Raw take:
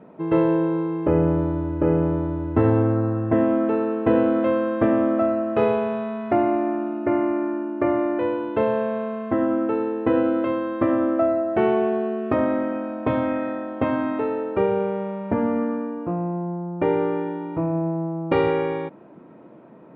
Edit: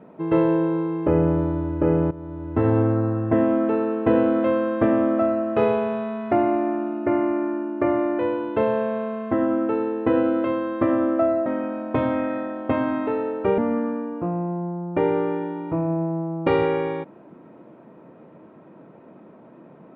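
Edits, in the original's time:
0:02.11–0:02.79: fade in, from −16.5 dB
0:11.46–0:12.58: remove
0:14.70–0:15.43: remove

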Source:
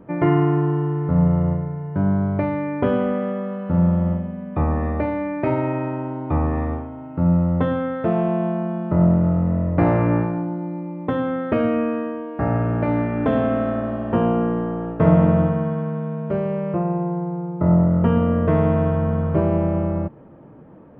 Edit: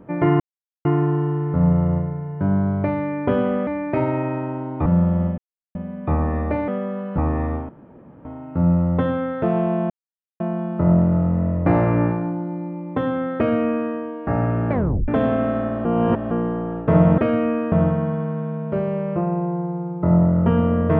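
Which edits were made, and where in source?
0:00.40: splice in silence 0.45 s
0:03.22–0:03.72: swap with 0:05.17–0:06.36
0:04.24: splice in silence 0.37 s
0:06.87: splice in room tone 0.56 s
0:08.52: splice in silence 0.50 s
0:11.49–0:12.03: duplicate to 0:15.30
0:12.83: tape stop 0.37 s
0:13.97–0:14.43: reverse

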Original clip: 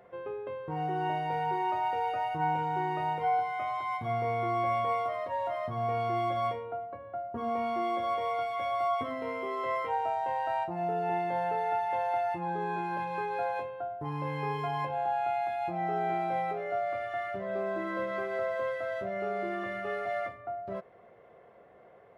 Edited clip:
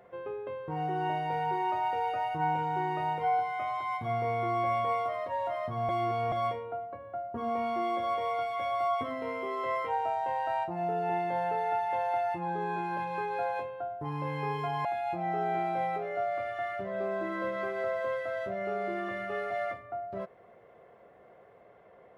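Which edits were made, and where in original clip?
0:05.89–0:06.32: reverse
0:14.85–0:15.40: remove

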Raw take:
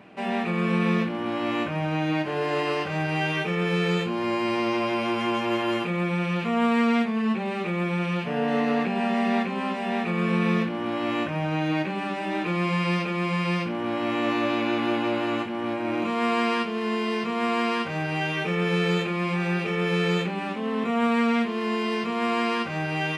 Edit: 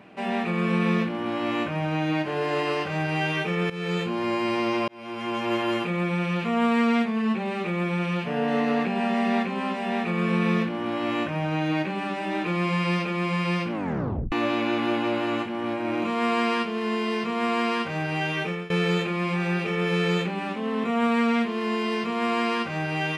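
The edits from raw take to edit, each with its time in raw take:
0:03.70–0:04.18: fade in equal-power, from −15.5 dB
0:04.88–0:05.52: fade in
0:13.72: tape stop 0.60 s
0:18.42–0:18.70: fade out, to −21 dB

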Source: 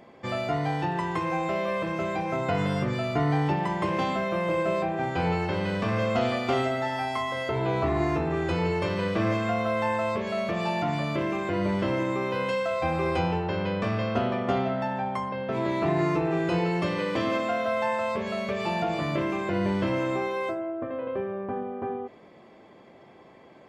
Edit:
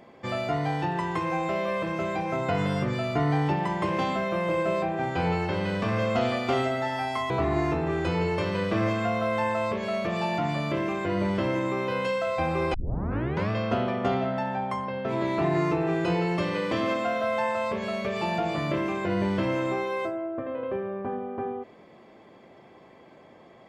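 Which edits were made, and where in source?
0:07.30–0:07.74: remove
0:13.18: tape start 0.76 s

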